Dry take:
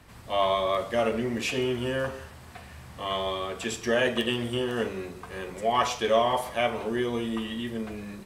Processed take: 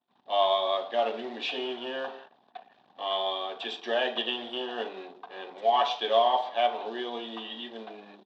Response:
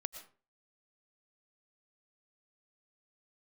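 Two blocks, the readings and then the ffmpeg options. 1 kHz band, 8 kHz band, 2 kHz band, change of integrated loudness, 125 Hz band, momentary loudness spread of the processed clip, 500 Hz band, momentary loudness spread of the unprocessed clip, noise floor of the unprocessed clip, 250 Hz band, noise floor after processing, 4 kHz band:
+1.5 dB, under -15 dB, -5.0 dB, -1.0 dB, under -25 dB, 15 LU, -2.0 dB, 14 LU, -47 dBFS, -10.5 dB, -65 dBFS, +1.5 dB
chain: -af "anlmdn=0.1,acrusher=bits=5:mode=log:mix=0:aa=0.000001,highpass=f=310:w=0.5412,highpass=f=310:w=1.3066,equalizer=f=350:t=q:w=4:g=-5,equalizer=f=500:t=q:w=4:g=-6,equalizer=f=760:t=q:w=4:g=9,equalizer=f=1.3k:t=q:w=4:g=-6,equalizer=f=2.1k:t=q:w=4:g=-9,equalizer=f=3.6k:t=q:w=4:g=9,lowpass=f=4k:w=0.5412,lowpass=f=4k:w=1.3066,volume=-1.5dB"

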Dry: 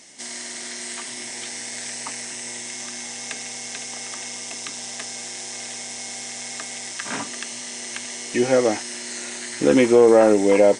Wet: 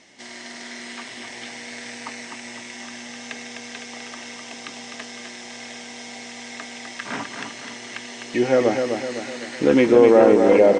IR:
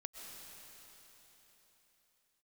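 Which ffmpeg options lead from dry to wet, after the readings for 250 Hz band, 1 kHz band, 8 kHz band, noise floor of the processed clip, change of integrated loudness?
+1.0 dB, +1.0 dB, -10.5 dB, -38 dBFS, +5.5 dB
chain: -af "lowpass=3.7k,aecho=1:1:254|508|762|1016|1270|1524:0.501|0.246|0.12|0.059|0.0289|0.0142"

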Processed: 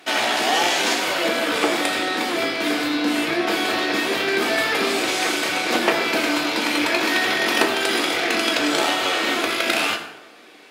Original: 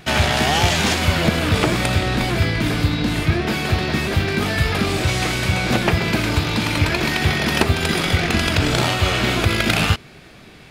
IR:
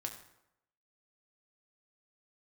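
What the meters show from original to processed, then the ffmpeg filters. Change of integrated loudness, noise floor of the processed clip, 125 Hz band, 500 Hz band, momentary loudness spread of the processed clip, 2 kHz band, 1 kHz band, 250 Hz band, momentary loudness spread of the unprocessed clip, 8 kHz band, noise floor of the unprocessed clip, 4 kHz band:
-1.0 dB, -44 dBFS, -25.5 dB, +0.5 dB, 3 LU, +0.5 dB, +0.5 dB, -3.0 dB, 3 LU, 0.0 dB, -43 dBFS, +0.5 dB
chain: -filter_complex "[0:a]highpass=f=290:w=0.5412,highpass=f=290:w=1.3066,dynaudnorm=f=290:g=17:m=11.5dB[a];[1:a]atrim=start_sample=2205,asetrate=39249,aresample=44100[b];[a][b]afir=irnorm=-1:irlink=0"

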